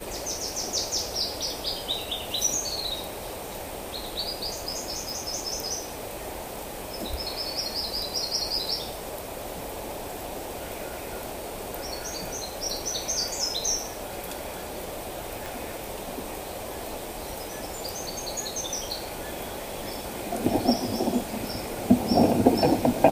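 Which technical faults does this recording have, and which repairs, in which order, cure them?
0:05.10: click
0:15.46: click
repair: click removal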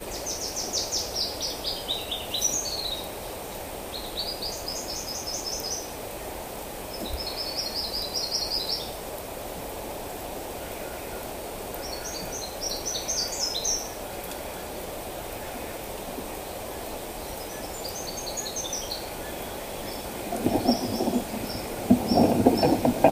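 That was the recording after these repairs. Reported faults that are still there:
none of them is left

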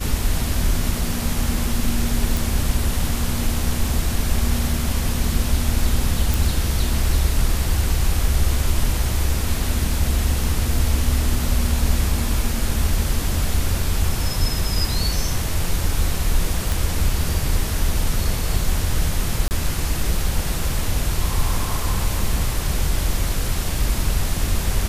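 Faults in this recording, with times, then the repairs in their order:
0:02.37: click
0:06.34: click
0:16.72: click
0:19.48–0:19.51: drop-out 29 ms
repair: click removal
repair the gap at 0:19.48, 29 ms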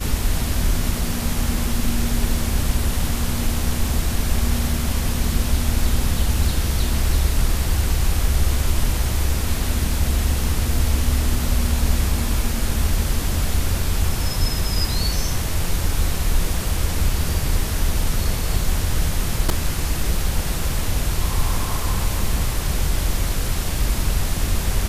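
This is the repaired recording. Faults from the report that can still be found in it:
none of them is left

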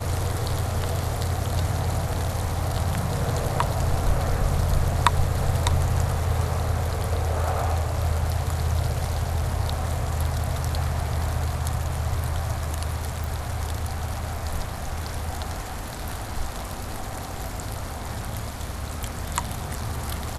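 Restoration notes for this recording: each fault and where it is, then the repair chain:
0:13.24: click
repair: click removal

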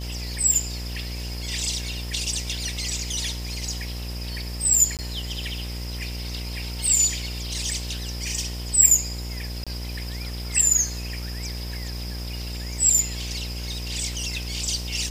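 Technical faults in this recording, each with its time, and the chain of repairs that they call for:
mains buzz 60 Hz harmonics 18 −32 dBFS
0:00.54: drop-out 2.2 ms
0:04.97–0:04.99: drop-out 18 ms
0:09.64–0:09.67: drop-out 26 ms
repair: hum removal 60 Hz, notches 18
repair the gap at 0:00.54, 2.2 ms
repair the gap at 0:04.97, 18 ms
repair the gap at 0:09.64, 26 ms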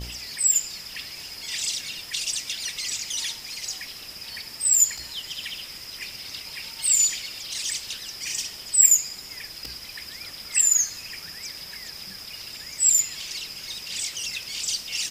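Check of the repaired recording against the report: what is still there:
none of them is left

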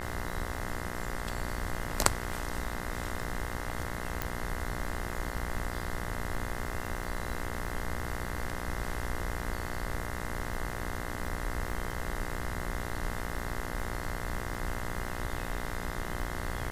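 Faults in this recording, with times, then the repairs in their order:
mains buzz 60 Hz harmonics 35 −39 dBFS
surface crackle 22 per second −39 dBFS
0:04.22: click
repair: click removal
hum removal 60 Hz, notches 35

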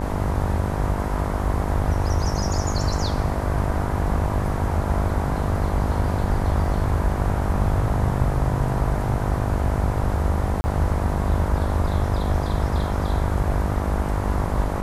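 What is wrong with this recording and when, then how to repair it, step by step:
mains buzz 50 Hz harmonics 20 −27 dBFS
0:10.61–0:10.64: drop-out 30 ms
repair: hum removal 50 Hz, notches 20
repair the gap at 0:10.61, 30 ms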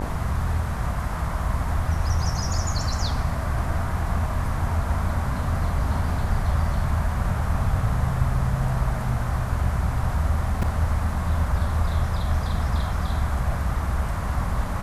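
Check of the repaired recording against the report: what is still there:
none of them is left

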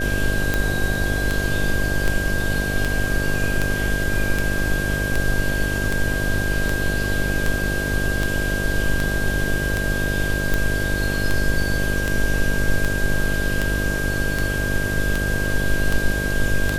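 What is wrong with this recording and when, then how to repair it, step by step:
mains buzz 50 Hz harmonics 13 −25 dBFS
scratch tick 78 rpm
whistle 1,600 Hz −25 dBFS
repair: click removal
notch filter 1,600 Hz, Q 30
hum removal 50 Hz, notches 13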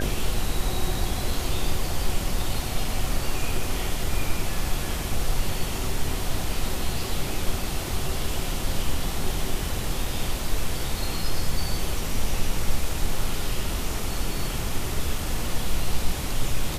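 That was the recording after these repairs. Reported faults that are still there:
none of them is left

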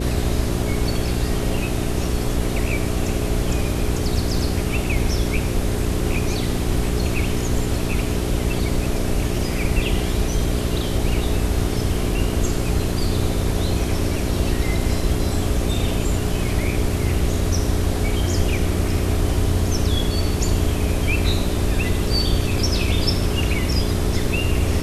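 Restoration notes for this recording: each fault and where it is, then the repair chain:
mains hum 60 Hz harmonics 7 −25 dBFS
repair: hum removal 60 Hz, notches 7

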